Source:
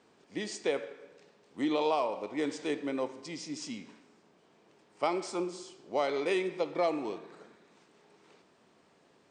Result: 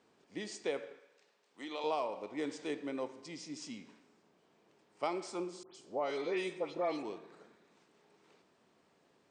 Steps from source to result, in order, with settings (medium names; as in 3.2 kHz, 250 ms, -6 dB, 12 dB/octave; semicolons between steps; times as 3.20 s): 0.99–1.84 s: high-pass 980 Hz 6 dB/octave; 5.63–7.03 s: phase dispersion highs, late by 125 ms, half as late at 2.4 kHz; trim -5.5 dB